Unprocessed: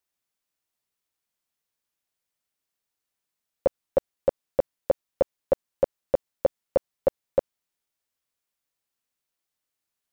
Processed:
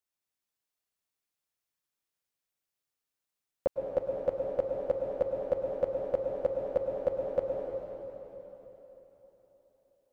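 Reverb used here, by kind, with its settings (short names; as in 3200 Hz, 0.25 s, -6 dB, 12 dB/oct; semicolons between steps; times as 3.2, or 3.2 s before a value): plate-style reverb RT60 3.9 s, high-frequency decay 0.95×, pre-delay 95 ms, DRR 0 dB; gain -7 dB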